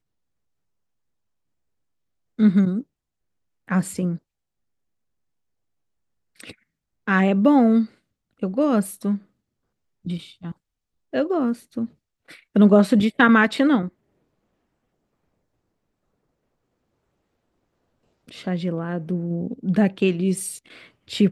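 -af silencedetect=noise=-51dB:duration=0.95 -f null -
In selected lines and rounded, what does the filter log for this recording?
silence_start: 0.00
silence_end: 2.38 | silence_duration: 2.38
silence_start: 4.19
silence_end: 6.36 | silence_duration: 2.17
silence_start: 13.89
silence_end: 18.27 | silence_duration: 4.38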